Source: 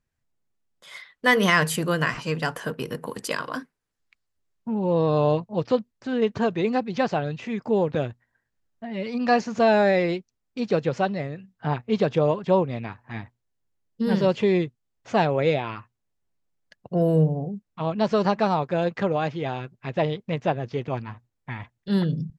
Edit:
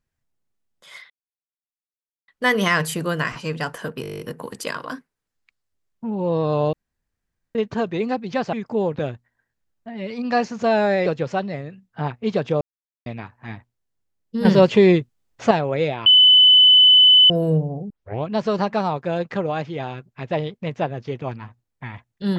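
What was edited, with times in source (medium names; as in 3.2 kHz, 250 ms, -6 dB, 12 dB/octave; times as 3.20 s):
1.10 s: insert silence 1.18 s
2.84 s: stutter 0.02 s, 10 plays
5.37–6.19 s: room tone
7.17–7.49 s: delete
10.02–10.72 s: delete
12.27–12.72 s: mute
14.11–15.17 s: gain +7.5 dB
15.72–16.96 s: bleep 3.01 kHz -8 dBFS
17.56 s: tape start 0.35 s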